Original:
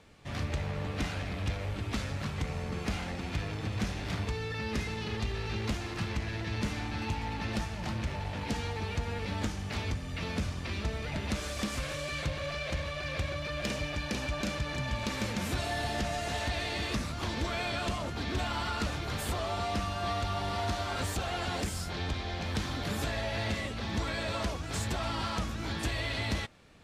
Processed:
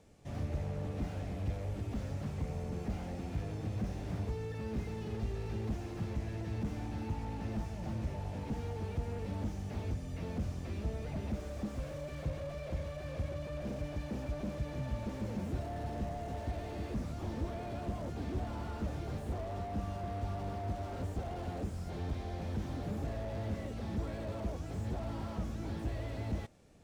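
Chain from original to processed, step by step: high-order bell 2.1 kHz -9 dB 2.5 oct; slew-rate limiter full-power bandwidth 8.5 Hz; trim -2.5 dB

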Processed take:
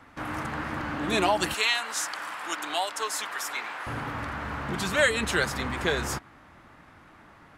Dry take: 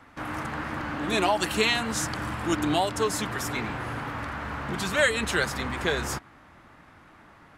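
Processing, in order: 1.54–3.87 s: high-pass 800 Hz 12 dB/octave

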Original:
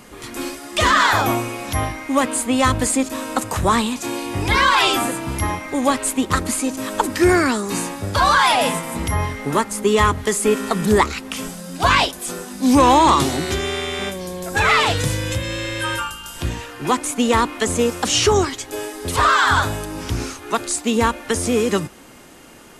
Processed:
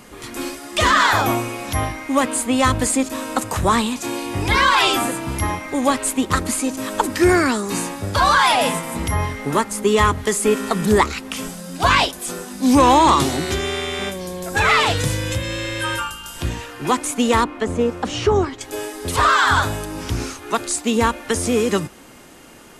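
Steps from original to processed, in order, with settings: 17.44–18.61 s: low-pass 1.2 kHz 6 dB/octave

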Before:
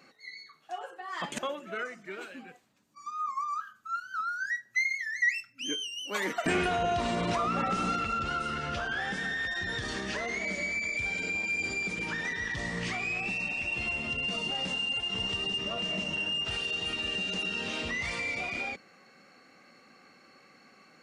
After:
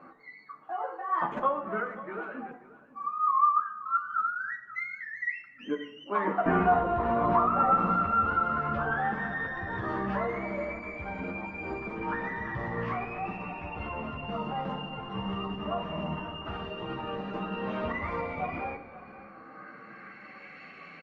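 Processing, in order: in parallel at +1 dB: compression 5:1, threshold -48 dBFS, peak gain reduction 22.5 dB; on the sum: chorus voices 4, 0.21 Hz, delay 12 ms, depth 3.3 ms; low-pass sweep 1.1 kHz -> 2.5 kHz, 19.23–20.62 s; 5.80–7.79 s: distance through air 78 m; delay 535 ms -17 dB; reverberation RT60 0.85 s, pre-delay 7 ms, DRR 8 dB; trim +3 dB; Opus 48 kbps 48 kHz

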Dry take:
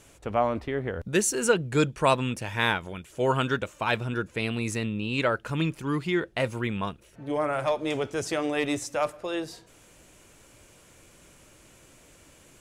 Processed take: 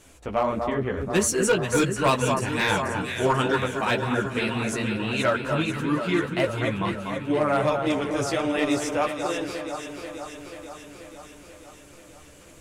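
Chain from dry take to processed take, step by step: chorus voices 4, 1.5 Hz, delay 13 ms, depth 3 ms; echo whose repeats swap between lows and highs 243 ms, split 1.6 kHz, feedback 80%, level -5.5 dB; overload inside the chain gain 19.5 dB; trim +5 dB

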